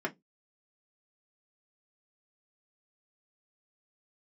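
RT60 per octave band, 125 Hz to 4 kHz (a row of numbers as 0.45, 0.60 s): 0.25, 0.25, 0.20, 0.15, 0.10, 0.15 s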